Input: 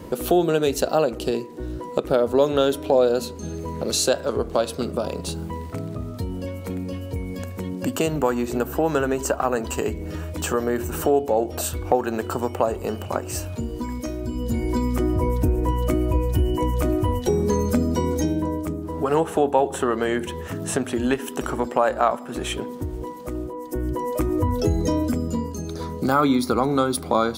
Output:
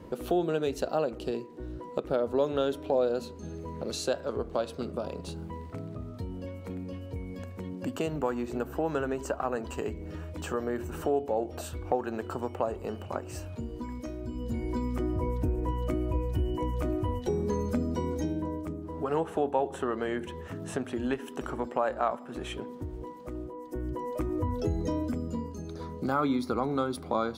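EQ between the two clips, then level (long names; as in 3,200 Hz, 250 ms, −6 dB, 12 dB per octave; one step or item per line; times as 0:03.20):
high-shelf EQ 5,800 Hz −11.5 dB
−8.5 dB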